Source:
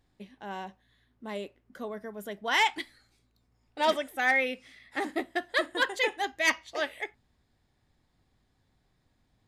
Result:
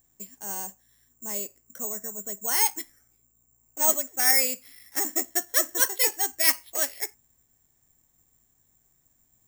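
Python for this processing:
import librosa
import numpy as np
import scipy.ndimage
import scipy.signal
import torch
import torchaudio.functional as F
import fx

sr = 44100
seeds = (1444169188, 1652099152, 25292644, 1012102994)

y = fx.high_shelf(x, sr, hz=2300.0, db=-10.5, at=(2.11, 4.18), fade=0.02)
y = (np.kron(scipy.signal.resample_poly(y, 1, 6), np.eye(6)[0]) * 6)[:len(y)]
y = y * 10.0 ** (-3.0 / 20.0)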